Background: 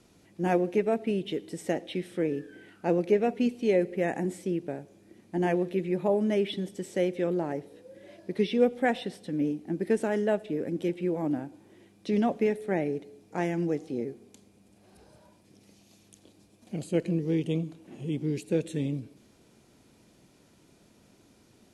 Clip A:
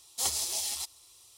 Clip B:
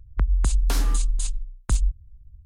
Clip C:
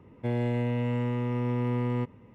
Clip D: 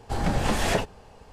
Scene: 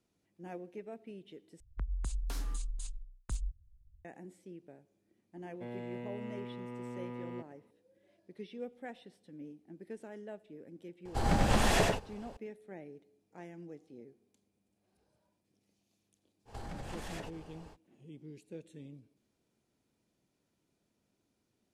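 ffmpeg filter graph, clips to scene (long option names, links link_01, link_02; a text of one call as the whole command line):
ffmpeg -i bed.wav -i cue0.wav -i cue1.wav -i cue2.wav -i cue3.wav -filter_complex "[4:a]asplit=2[link_01][link_02];[0:a]volume=-19.5dB[link_03];[3:a]highpass=190[link_04];[link_01]aecho=1:1:95:0.708[link_05];[link_02]acompressor=threshold=-36dB:ratio=6:attack=3.2:release=140:knee=1:detection=peak[link_06];[link_03]asplit=2[link_07][link_08];[link_07]atrim=end=1.604[link_09];[2:a]atrim=end=2.45,asetpts=PTS-STARTPTS,volume=-15.5dB[link_10];[link_08]atrim=start=4.046[link_11];[link_04]atrim=end=2.34,asetpts=PTS-STARTPTS,volume=-12dB,afade=type=in:duration=0.004:curve=hsin,afade=type=out:start_time=2.336:duration=0.004:curve=hsin,adelay=236817S[link_12];[link_05]atrim=end=1.32,asetpts=PTS-STARTPTS,volume=-4.5dB,afade=type=in:duration=0.004:curve=hsin,afade=type=out:start_time=1.316:duration=0.004:curve=hsin,adelay=11050[link_13];[link_06]atrim=end=1.32,asetpts=PTS-STARTPTS,volume=-4.5dB,afade=type=in:duration=0.05,afade=type=out:start_time=1.27:duration=0.05,adelay=16450[link_14];[link_09][link_10]acrossfade=duration=0.004:curve1=hsin:curve2=hsin[link_15];[link_15][link_11]acrossfade=duration=0.004:curve1=hsin:curve2=hsin[link_16];[link_16][link_12][link_13][link_14]amix=inputs=4:normalize=0" out.wav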